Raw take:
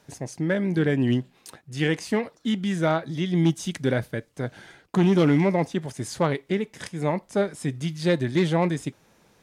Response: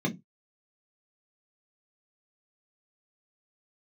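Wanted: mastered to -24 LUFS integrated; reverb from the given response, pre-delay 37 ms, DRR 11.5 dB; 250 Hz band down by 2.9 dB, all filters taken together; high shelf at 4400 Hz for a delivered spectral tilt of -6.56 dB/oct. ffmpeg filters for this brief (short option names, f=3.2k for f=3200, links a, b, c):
-filter_complex "[0:a]equalizer=f=250:t=o:g=-4.5,highshelf=f=4.4k:g=3.5,asplit=2[a][b];[1:a]atrim=start_sample=2205,adelay=37[c];[b][c]afir=irnorm=-1:irlink=0,volume=-18.5dB[d];[a][d]amix=inputs=2:normalize=0,volume=-0.5dB"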